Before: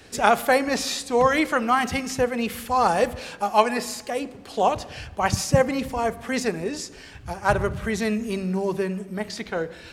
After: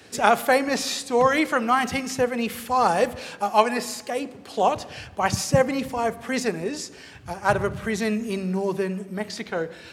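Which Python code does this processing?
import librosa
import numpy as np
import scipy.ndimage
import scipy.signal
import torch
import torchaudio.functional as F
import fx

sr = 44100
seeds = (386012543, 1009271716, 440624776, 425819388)

y = scipy.signal.sosfilt(scipy.signal.butter(2, 100.0, 'highpass', fs=sr, output='sos'), x)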